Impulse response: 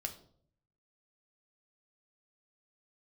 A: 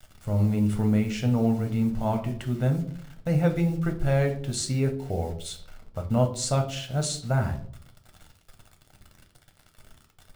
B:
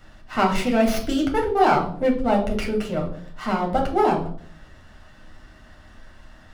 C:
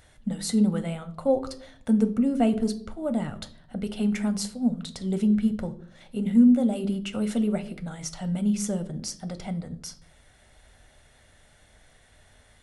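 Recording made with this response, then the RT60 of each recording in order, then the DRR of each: A; 0.60, 0.60, 0.60 seconds; 3.5, −1.0, 8.5 decibels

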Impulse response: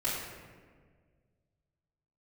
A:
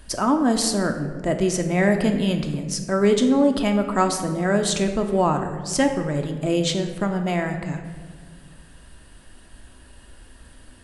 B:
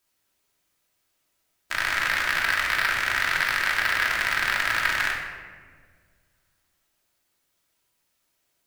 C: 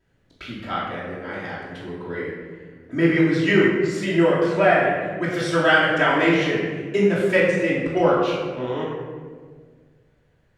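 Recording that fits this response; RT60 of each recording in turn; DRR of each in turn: C; 1.7, 1.7, 1.7 seconds; 4.5, −3.0, −11.0 decibels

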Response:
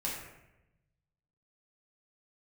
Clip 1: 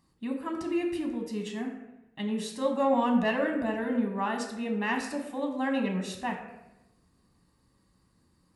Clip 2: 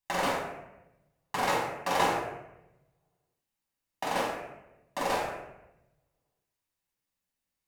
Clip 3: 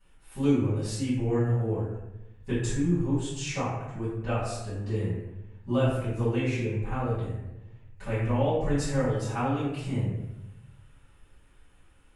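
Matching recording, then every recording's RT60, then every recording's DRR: 2; 0.90, 0.90, 0.90 seconds; 2.0, −4.5, −14.0 decibels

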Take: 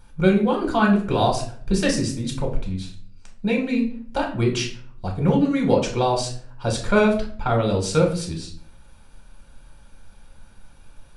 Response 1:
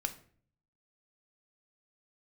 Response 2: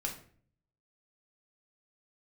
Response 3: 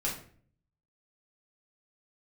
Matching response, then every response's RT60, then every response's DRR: 2; 0.50, 0.50, 0.50 seconds; 7.0, 0.5, −4.5 decibels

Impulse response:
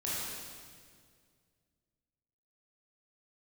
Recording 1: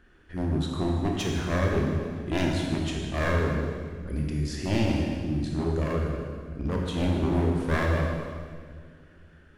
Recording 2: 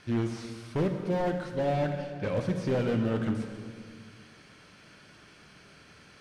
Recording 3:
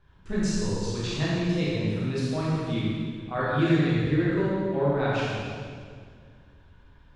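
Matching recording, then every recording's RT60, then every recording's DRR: 3; 2.0, 2.0, 2.0 seconds; −0.5, 5.0, −8.5 decibels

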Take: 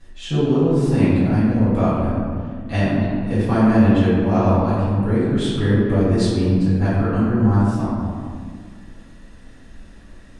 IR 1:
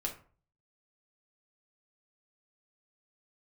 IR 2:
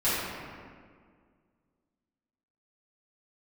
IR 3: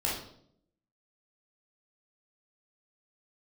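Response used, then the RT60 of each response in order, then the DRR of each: 2; 0.45, 1.9, 0.65 seconds; −0.5, −14.0, −5.0 decibels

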